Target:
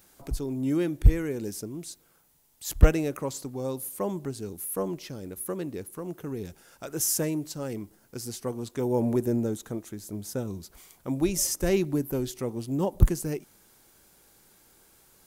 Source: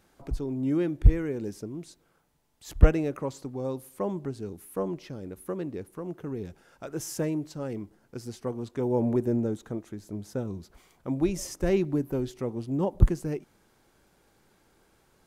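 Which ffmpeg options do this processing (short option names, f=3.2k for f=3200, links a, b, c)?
-af "aemphasis=mode=production:type=75kf"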